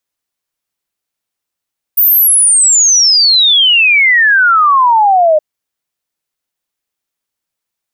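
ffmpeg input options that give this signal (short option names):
-f lavfi -i "aevalsrc='0.562*clip(min(t,3.42-t)/0.01,0,1)*sin(2*PI*15000*3.42/log(600/15000)*(exp(log(600/15000)*t/3.42)-1))':d=3.42:s=44100"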